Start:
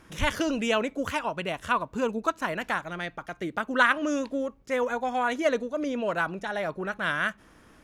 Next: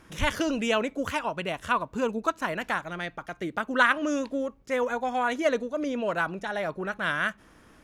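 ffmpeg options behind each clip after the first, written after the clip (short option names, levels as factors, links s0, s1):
-af anull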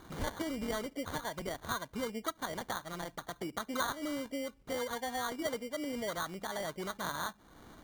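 -af "acrusher=samples=17:mix=1:aa=0.000001,acompressor=threshold=0.00631:ratio=2,volume=1.12"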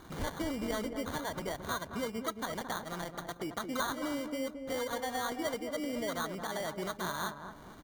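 -filter_complex "[0:a]asoftclip=type=tanh:threshold=0.0501,asplit=2[s0][s1];[s1]adelay=221,lowpass=f=1000:p=1,volume=0.501,asplit=2[s2][s3];[s3]adelay=221,lowpass=f=1000:p=1,volume=0.42,asplit=2[s4][s5];[s5]adelay=221,lowpass=f=1000:p=1,volume=0.42,asplit=2[s6][s7];[s7]adelay=221,lowpass=f=1000:p=1,volume=0.42,asplit=2[s8][s9];[s9]adelay=221,lowpass=f=1000:p=1,volume=0.42[s10];[s2][s4][s6][s8][s10]amix=inputs=5:normalize=0[s11];[s0][s11]amix=inputs=2:normalize=0,volume=1.19"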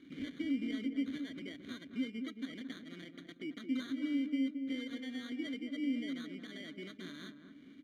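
-filter_complex "[0:a]asplit=3[s0][s1][s2];[s0]bandpass=f=270:t=q:w=8,volume=1[s3];[s1]bandpass=f=2290:t=q:w=8,volume=0.501[s4];[s2]bandpass=f=3010:t=q:w=8,volume=0.355[s5];[s3][s4][s5]amix=inputs=3:normalize=0,volume=2.24"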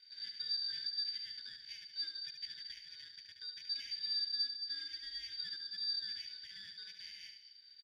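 -filter_complex "[0:a]afftfilt=real='real(if(lt(b,272),68*(eq(floor(b/68),0)*3+eq(floor(b/68),1)*2+eq(floor(b/68),2)*1+eq(floor(b/68),3)*0)+mod(b,68),b),0)':imag='imag(if(lt(b,272),68*(eq(floor(b/68),0)*3+eq(floor(b/68),1)*2+eq(floor(b/68),2)*1+eq(floor(b/68),3)*0)+mod(b,68),b),0)':win_size=2048:overlap=0.75,asplit=2[s0][s1];[s1]aecho=0:1:72|144|216|288:0.447|0.165|0.0612|0.0226[s2];[s0][s2]amix=inputs=2:normalize=0,volume=0.596"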